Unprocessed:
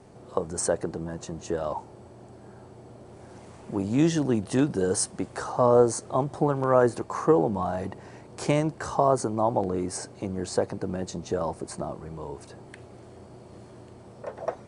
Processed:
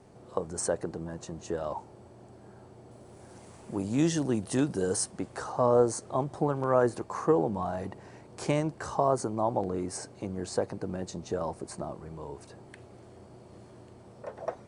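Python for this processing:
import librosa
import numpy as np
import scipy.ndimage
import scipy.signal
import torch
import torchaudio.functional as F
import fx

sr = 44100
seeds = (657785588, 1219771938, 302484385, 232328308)

y = fx.high_shelf(x, sr, hz=7800.0, db=11.5, at=(2.91, 4.97))
y = y * 10.0 ** (-4.0 / 20.0)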